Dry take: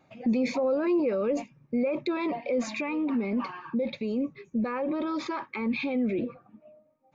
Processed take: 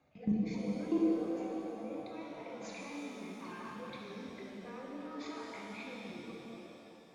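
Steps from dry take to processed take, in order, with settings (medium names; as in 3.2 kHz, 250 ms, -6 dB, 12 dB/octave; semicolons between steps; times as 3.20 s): level held to a coarse grid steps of 23 dB; frequency shift -22 Hz; pitch-shifted reverb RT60 3.4 s, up +7 st, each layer -8 dB, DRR -3.5 dB; trim -4.5 dB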